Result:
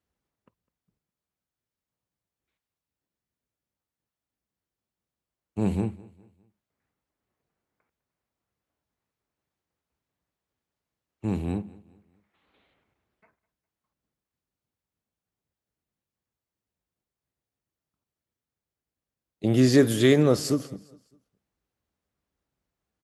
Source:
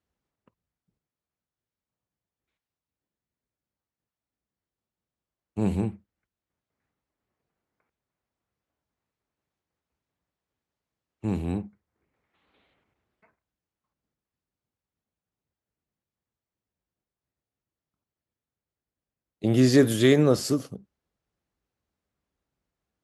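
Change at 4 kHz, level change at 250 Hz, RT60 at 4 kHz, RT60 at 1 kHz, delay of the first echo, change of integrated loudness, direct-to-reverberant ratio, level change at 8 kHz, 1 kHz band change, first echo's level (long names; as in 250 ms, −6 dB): 0.0 dB, 0.0 dB, no reverb audible, no reverb audible, 204 ms, 0.0 dB, no reverb audible, 0.0 dB, 0.0 dB, −21.5 dB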